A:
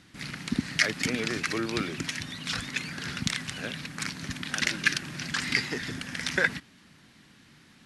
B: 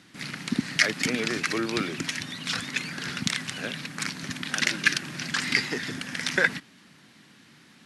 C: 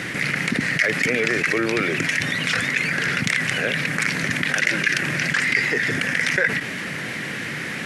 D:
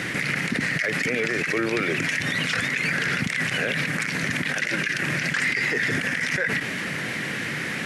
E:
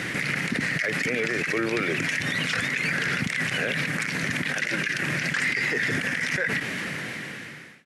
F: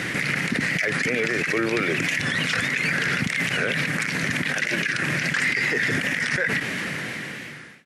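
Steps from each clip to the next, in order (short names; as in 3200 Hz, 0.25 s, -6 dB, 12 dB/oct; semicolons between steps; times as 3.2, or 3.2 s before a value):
HPF 140 Hz 12 dB/oct; gain +2.5 dB
graphic EQ 125/250/500/1000/2000/4000 Hz +4/-4/+9/-4/+11/-6 dB; in parallel at -9 dB: soft clip -14.5 dBFS, distortion -7 dB; on the sum: fast leveller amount 70%; gain -8.5 dB
limiter -14.5 dBFS, peak gain reduction 10.5 dB
ending faded out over 1.06 s; gain -1.5 dB
record warp 45 rpm, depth 100 cents; gain +2.5 dB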